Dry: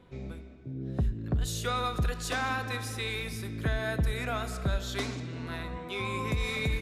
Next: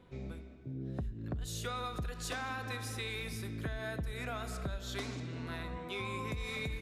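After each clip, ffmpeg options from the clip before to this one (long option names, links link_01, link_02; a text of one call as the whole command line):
ffmpeg -i in.wav -af "acompressor=threshold=-32dB:ratio=6,volume=-3dB" out.wav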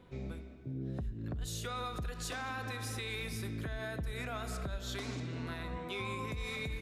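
ffmpeg -i in.wav -af "alimiter=level_in=7dB:limit=-24dB:level=0:latency=1:release=104,volume=-7dB,volume=1.5dB" out.wav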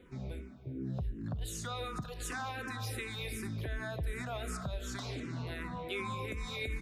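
ffmpeg -i in.wav -filter_complex "[0:a]asplit=2[link_01][link_02];[link_02]afreqshift=-2.7[link_03];[link_01][link_03]amix=inputs=2:normalize=1,volume=3.5dB" out.wav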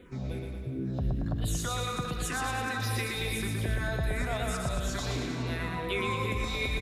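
ffmpeg -i in.wav -af "aecho=1:1:120|228|325.2|412.7|491.4:0.631|0.398|0.251|0.158|0.1,volume=5.5dB" out.wav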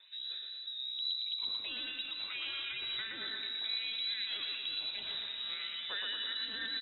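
ffmpeg -i in.wav -af "lowpass=frequency=3400:width_type=q:width=0.5098,lowpass=frequency=3400:width_type=q:width=0.6013,lowpass=frequency=3400:width_type=q:width=0.9,lowpass=frequency=3400:width_type=q:width=2.563,afreqshift=-4000,volume=-7.5dB" out.wav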